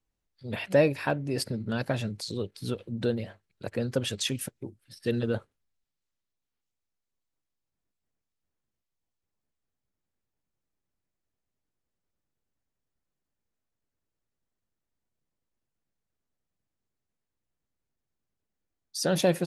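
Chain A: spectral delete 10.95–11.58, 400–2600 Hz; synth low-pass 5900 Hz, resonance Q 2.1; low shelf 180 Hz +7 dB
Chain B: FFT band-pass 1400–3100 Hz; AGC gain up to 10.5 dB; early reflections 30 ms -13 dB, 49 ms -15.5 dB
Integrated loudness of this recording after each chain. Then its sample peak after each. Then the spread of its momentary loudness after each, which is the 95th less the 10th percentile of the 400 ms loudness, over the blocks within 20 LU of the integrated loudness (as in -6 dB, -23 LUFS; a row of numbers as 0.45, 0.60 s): -28.0, -30.5 LUFS; -9.5, -12.5 dBFS; 14, 20 LU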